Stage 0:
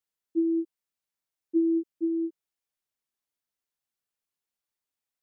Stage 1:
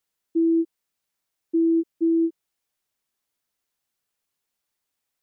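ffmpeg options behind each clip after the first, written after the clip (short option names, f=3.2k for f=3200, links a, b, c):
-af "alimiter=limit=-24dB:level=0:latency=1:release=18,volume=8dB"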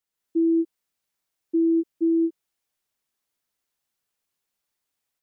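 -af "dynaudnorm=f=110:g=3:m=6dB,volume=-6.5dB"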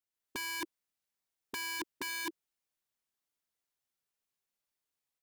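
-af "aeval=exprs='(mod(15.8*val(0)+1,2)-1)/15.8':c=same,volume=-8dB"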